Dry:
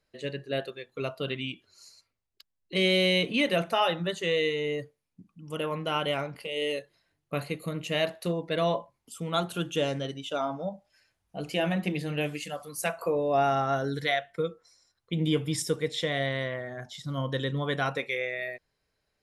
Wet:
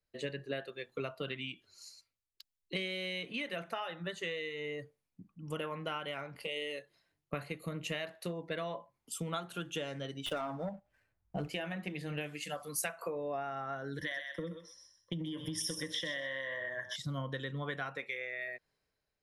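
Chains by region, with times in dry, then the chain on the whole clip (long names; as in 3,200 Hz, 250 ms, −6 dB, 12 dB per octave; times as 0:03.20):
0:10.26–0:11.48: running median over 9 samples + low-shelf EQ 150 Hz +9.5 dB + leveller curve on the samples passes 1
0:13.98–0:16.96: EQ curve with evenly spaced ripples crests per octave 1.2, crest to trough 16 dB + downward compressor, threshold −29 dBFS + feedback echo with a high-pass in the loop 127 ms, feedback 26%, high-pass 1,200 Hz, level −5 dB
whole clip: dynamic equaliser 1,700 Hz, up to +7 dB, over −44 dBFS, Q 1.1; downward compressor 20 to 1, threshold −37 dBFS; multiband upward and downward expander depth 40%; level +2 dB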